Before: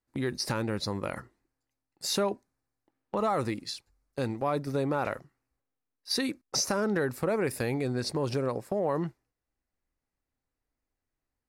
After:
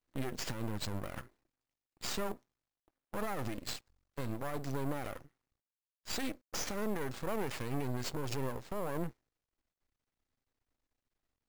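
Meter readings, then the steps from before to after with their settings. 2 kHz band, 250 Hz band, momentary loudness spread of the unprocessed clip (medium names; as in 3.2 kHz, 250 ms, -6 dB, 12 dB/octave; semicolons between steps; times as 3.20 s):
-7.0 dB, -8.0 dB, 10 LU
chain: peak limiter -26.5 dBFS, peak gain reduction 10 dB; sample-rate reducer 12 kHz, jitter 0%; half-wave rectifier; trim +2 dB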